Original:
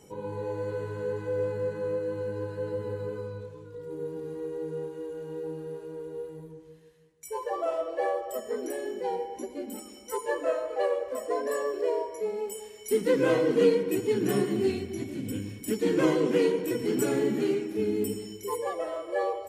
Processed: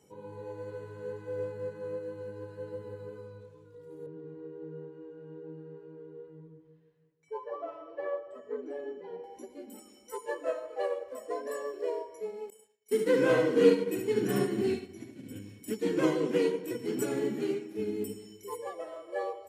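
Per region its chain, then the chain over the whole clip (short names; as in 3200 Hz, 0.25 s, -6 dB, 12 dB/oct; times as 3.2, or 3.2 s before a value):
4.06–9.24 tape spacing loss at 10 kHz 32 dB + comb 7 ms, depth 94%
12.5–15.39 expander -31 dBFS + bell 1600 Hz +3 dB 0.49 oct + echo 71 ms -4 dB
whole clip: HPF 68 Hz; upward expander 1.5:1, over -34 dBFS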